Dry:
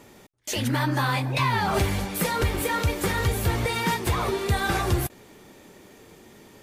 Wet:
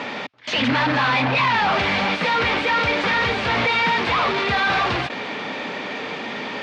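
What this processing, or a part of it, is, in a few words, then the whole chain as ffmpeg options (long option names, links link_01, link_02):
overdrive pedal into a guitar cabinet: -filter_complex "[0:a]asplit=2[link_01][link_02];[link_02]highpass=frequency=720:poles=1,volume=34dB,asoftclip=type=tanh:threshold=-13dB[link_03];[link_01][link_03]amix=inputs=2:normalize=0,lowpass=frequency=4300:poles=1,volume=-6dB,highpass=91,equalizer=frequency=100:width_type=q:width=4:gain=-5,equalizer=frequency=250:width_type=q:width=4:gain=4,equalizer=frequency=360:width_type=q:width=4:gain=-9,equalizer=frequency=2400:width_type=q:width=4:gain=3,lowpass=frequency=4300:width=0.5412,lowpass=frequency=4300:width=1.3066"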